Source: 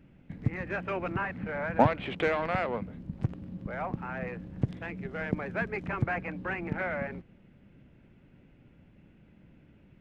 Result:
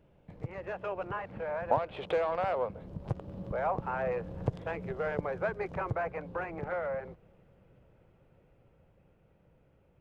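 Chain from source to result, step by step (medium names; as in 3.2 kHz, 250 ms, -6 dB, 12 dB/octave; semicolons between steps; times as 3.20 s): Doppler pass-by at 4.19 s, 16 m/s, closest 18 m; ten-band graphic EQ 250 Hz -11 dB, 500 Hz +9 dB, 1 kHz +5 dB, 2 kHz -6 dB; compression 1.5:1, threshold -48 dBFS, peak gain reduction 10.5 dB; trim +7.5 dB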